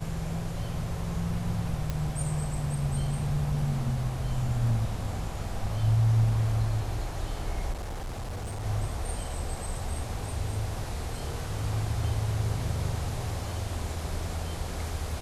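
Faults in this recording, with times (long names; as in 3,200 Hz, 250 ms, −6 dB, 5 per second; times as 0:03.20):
0:01.90: click −17 dBFS
0:07.72–0:08.63: clipping −31.5 dBFS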